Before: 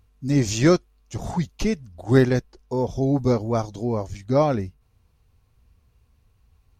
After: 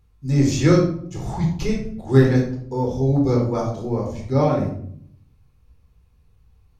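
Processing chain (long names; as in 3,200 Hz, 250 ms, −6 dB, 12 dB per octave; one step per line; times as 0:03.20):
rectangular room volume 1,000 cubic metres, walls furnished, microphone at 4.1 metres
level −5 dB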